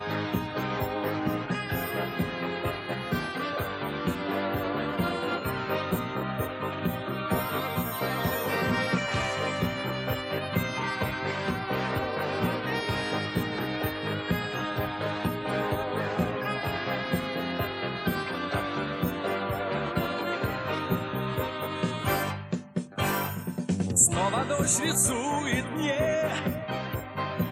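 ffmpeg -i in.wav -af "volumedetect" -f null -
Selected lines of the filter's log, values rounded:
mean_volume: -29.3 dB
max_volume: -8.6 dB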